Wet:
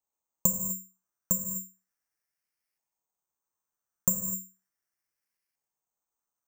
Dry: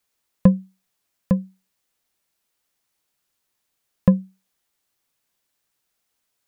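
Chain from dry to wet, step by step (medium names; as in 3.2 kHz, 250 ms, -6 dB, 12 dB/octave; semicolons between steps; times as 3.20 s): compression, threshold -14 dBFS, peak gain reduction 6.5 dB; LFO low-pass saw up 0.36 Hz 880–2300 Hz; gated-style reverb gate 270 ms flat, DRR 6 dB; careless resampling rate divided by 6×, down filtered, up zero stuff; trim -15 dB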